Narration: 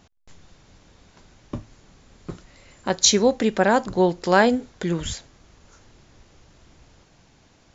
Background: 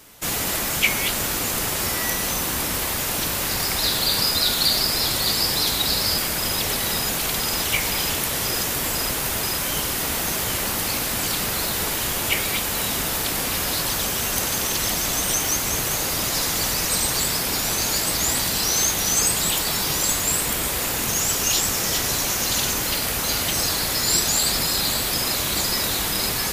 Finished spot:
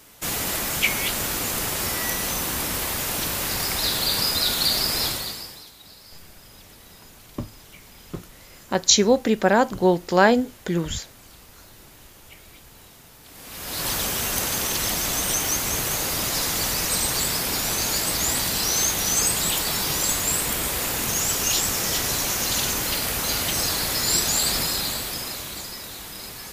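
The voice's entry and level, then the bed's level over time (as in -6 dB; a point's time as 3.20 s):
5.85 s, +0.5 dB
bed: 5.06 s -2 dB
5.72 s -25.5 dB
13.21 s -25.5 dB
13.87 s -1.5 dB
24.59 s -1.5 dB
25.80 s -13.5 dB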